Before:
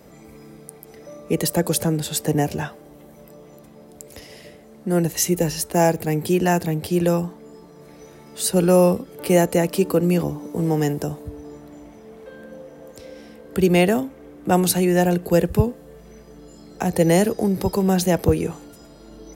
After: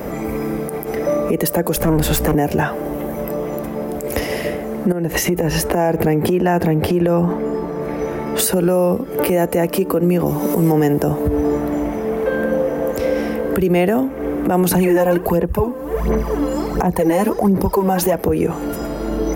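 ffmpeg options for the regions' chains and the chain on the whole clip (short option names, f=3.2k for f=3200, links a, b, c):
-filter_complex "[0:a]asettb=1/sr,asplit=3[a][b][c];[a]atrim=end=1.764[d];[b]atrim=start=1.76:end=2.35,asetpts=PTS-STARTPTS,afade=t=in:d=0.004:c=qsin,afade=t=out:st=0.586:d=0.004:c=qsin,aeval=exprs='(tanh(14.1*val(0)+0.4)-tanh(0.4))/14.1':c=same,aeval=exprs='val(0)+0.0126*(sin(2*PI*60*n/s)+sin(2*PI*2*60*n/s)/2+sin(2*PI*3*60*n/s)/3+sin(2*PI*4*60*n/s)/4+sin(2*PI*5*60*n/s)/5)':c=same[e];[c]atrim=start=2.346[f];[d][e]acrossfade=d=0.004:c1=hsin:c2=qsin[g];[g][f]acrossfade=d=0.004:c1=qsin:c2=hsin,asettb=1/sr,asplit=3[h][i][j];[h]atrim=end=4.924[k];[i]atrim=start=4.92:end=8.39,asetpts=PTS-STARTPTS,afade=t=in:d=0.004:c=qsin,afade=t=out:st=3.466:d=0.004:c=qsin,highshelf=f=5.4k:g=-10.5,acompressor=threshold=-30dB:ratio=10:attack=3.2:release=140:knee=1:detection=peak[l];[j]atrim=start=8.386[m];[k][l]acrossfade=d=0.004:c1=hsin:c2=qsin[n];[n][m]acrossfade=d=0.004:c1=qsin:c2=hsin,asettb=1/sr,asplit=3[o][p][q];[o]atrim=end=10.264[r];[p]atrim=start=10.26:end=10.72,asetpts=PTS-STARTPTS,afade=t=in:d=0.004:c=qsin,afade=t=out:st=0.456:d=0.004:c=qsin,highshelf=f=3.1k:g=11.5,aecho=1:1:5.3:0.38,atrim=end_sample=20286[s];[q]atrim=start=10.716[t];[r][s]acrossfade=d=0.004:c1=hsin:c2=qsin[u];[u][t]acrossfade=d=0.004:c1=qsin:c2=hsin,asettb=1/sr,asplit=3[v][w][x];[v]atrim=end=14.714[y];[w]atrim=start=14.71:end=18.14,asetpts=PTS-STARTPTS,afade=t=in:d=0.004:c=qsin,afade=t=out:st=3.426:d=0.004:c=qsin,equalizer=f=1k:t=o:w=0.36:g=9,aphaser=in_gain=1:out_gain=1:delay=3.9:decay=0.66:speed=1.4:type=sinusoidal[z];[x]atrim=start=18.136[aa];[y][z]acrossfade=d=0.004:c1=hsin:c2=qsin[ab];[ab][aa]acrossfade=d=0.004:c1=qsin:c2=hsin,equalizer=f=125:t=o:w=1:g=-6,equalizer=f=4k:t=o:w=1:g=-10,equalizer=f=8k:t=o:w=1:g=-9,acompressor=threshold=-33dB:ratio=6,alimiter=level_in=29dB:limit=-1dB:release=50:level=0:latency=1,volume=-6.5dB"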